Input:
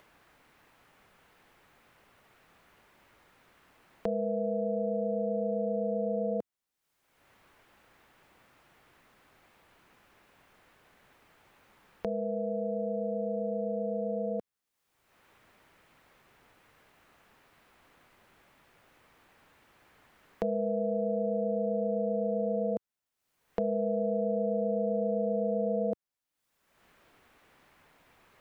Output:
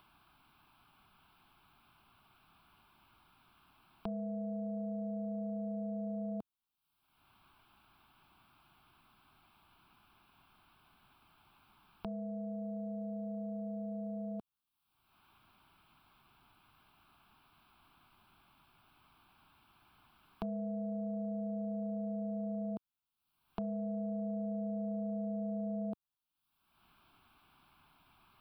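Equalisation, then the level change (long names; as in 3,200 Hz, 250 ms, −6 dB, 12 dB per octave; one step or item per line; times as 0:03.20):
phaser with its sweep stopped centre 1,900 Hz, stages 6
−1.0 dB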